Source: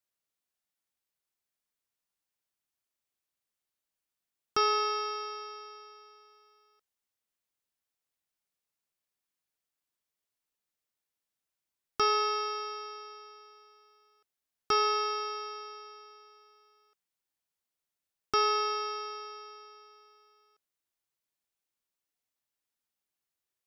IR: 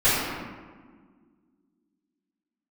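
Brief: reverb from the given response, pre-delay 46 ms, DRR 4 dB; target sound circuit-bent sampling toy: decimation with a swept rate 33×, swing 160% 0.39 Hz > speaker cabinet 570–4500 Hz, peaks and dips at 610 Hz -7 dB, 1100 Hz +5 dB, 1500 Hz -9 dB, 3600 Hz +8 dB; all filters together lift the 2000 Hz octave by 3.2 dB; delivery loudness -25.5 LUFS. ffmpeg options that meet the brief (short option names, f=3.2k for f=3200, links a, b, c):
-filter_complex "[0:a]equalizer=f=2k:t=o:g=5,asplit=2[a][b];[1:a]atrim=start_sample=2205,adelay=46[c];[b][c]afir=irnorm=-1:irlink=0,volume=-23dB[d];[a][d]amix=inputs=2:normalize=0,acrusher=samples=33:mix=1:aa=0.000001:lfo=1:lforange=52.8:lforate=0.39,highpass=570,equalizer=f=610:t=q:w=4:g=-7,equalizer=f=1.1k:t=q:w=4:g=5,equalizer=f=1.5k:t=q:w=4:g=-9,equalizer=f=3.6k:t=q:w=4:g=8,lowpass=f=4.5k:w=0.5412,lowpass=f=4.5k:w=1.3066,volume=6.5dB"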